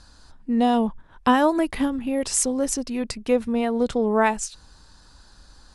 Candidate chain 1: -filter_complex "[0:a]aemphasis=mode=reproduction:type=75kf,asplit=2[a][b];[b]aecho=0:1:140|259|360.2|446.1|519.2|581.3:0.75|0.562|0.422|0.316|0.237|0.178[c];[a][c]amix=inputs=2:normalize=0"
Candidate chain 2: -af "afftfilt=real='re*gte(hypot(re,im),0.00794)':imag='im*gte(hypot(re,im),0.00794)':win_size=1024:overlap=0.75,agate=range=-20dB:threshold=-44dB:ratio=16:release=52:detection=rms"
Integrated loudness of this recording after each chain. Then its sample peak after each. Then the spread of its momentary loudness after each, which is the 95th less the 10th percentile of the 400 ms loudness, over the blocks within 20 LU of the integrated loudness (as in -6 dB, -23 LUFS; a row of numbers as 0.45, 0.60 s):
-20.0, -23.0 LUFS; -3.5, -5.0 dBFS; 8, 9 LU